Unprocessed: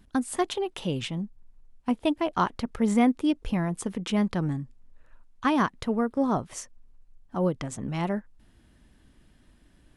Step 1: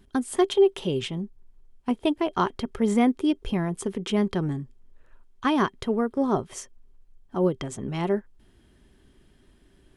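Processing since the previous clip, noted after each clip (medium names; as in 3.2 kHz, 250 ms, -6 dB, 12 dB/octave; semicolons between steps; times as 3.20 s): small resonant body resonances 390/3200 Hz, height 13 dB, ringing for 85 ms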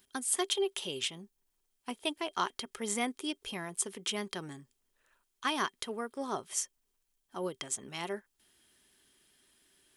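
tilt EQ +4.5 dB/octave; trim -7.5 dB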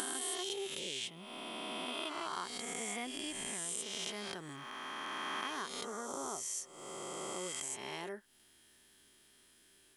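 reverse spectral sustain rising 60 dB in 2.27 s; compression 2.5:1, threshold -41 dBFS, peak gain reduction 13 dB; trim -1 dB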